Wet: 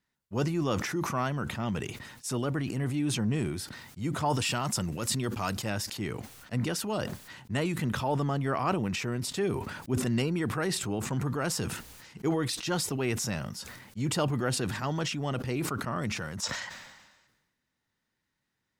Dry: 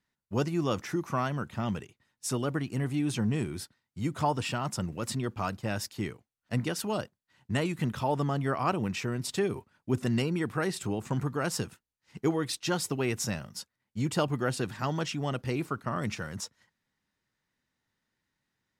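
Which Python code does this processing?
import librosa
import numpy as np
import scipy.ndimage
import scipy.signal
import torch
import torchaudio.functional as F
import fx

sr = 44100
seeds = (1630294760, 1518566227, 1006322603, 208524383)

y = fx.high_shelf(x, sr, hz=3300.0, db=9.5, at=(4.3, 5.7))
y = fx.spec_box(y, sr, start_s=16.43, length_s=0.84, low_hz=500.0, high_hz=8300.0, gain_db=11)
y = fx.transient(y, sr, attack_db=-3, sustain_db=3)
y = fx.sustainer(y, sr, db_per_s=47.0)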